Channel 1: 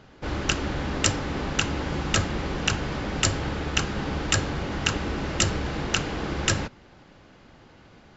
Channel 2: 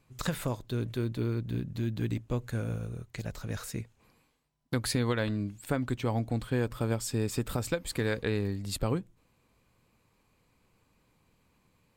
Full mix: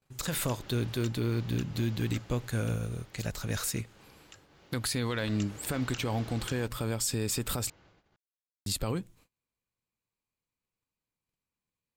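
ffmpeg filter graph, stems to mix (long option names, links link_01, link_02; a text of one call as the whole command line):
ffmpeg -i stem1.wav -i stem2.wav -filter_complex "[0:a]equalizer=frequency=240:width_type=o:width=0.24:gain=-11.5,bandreject=frequency=76.42:width_type=h:width=4,bandreject=frequency=152.84:width_type=h:width=4,bandreject=frequency=229.26:width_type=h:width=4,acrossover=split=150|2700[link_01][link_02][link_03];[link_01]acompressor=threshold=-48dB:ratio=4[link_04];[link_02]acompressor=threshold=-38dB:ratio=4[link_05];[link_03]acompressor=threshold=-35dB:ratio=4[link_06];[link_04][link_05][link_06]amix=inputs=3:normalize=0,volume=-1dB,afade=type=out:start_time=2.23:duration=0.41:silence=0.421697,afade=type=in:start_time=4.96:duration=0.78:silence=0.251189[link_07];[1:a]highshelf=frequency=2200:gain=8,alimiter=limit=-23.5dB:level=0:latency=1:release=72,volume=2.5dB,asplit=3[link_08][link_09][link_10];[link_08]atrim=end=7.7,asetpts=PTS-STARTPTS,afade=type=out:start_time=7.696:duration=0.004:curve=hsin[link_11];[link_09]atrim=start=7.7:end=8.66,asetpts=PTS-STARTPTS,volume=0[link_12];[link_10]atrim=start=8.66,asetpts=PTS-STARTPTS,afade=type=in:duration=0.004:curve=hsin[link_13];[link_11][link_12][link_13]concat=n=3:v=0:a=1[link_14];[link_07][link_14]amix=inputs=2:normalize=0,agate=range=-28dB:threshold=-59dB:ratio=16:detection=peak" out.wav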